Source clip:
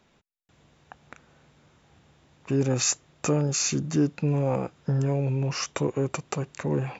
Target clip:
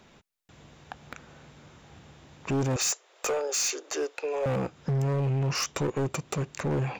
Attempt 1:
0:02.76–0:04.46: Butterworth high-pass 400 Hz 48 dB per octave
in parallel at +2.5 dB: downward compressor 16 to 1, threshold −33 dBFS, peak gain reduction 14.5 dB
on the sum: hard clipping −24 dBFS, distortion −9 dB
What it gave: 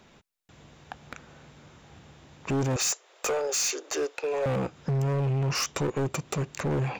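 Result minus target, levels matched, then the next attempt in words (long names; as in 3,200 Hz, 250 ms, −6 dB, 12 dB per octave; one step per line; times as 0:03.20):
downward compressor: peak gain reduction −5.5 dB
0:02.76–0:04.46: Butterworth high-pass 400 Hz 48 dB per octave
in parallel at +2.5 dB: downward compressor 16 to 1, threshold −39 dBFS, peak gain reduction 20 dB
on the sum: hard clipping −24 dBFS, distortion −10 dB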